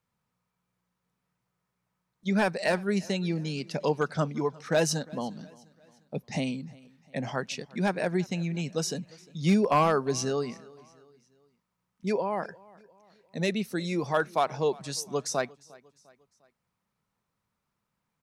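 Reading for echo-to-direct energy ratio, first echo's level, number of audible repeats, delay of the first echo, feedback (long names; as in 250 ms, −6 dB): −22.5 dB, −23.5 dB, 2, 352 ms, 47%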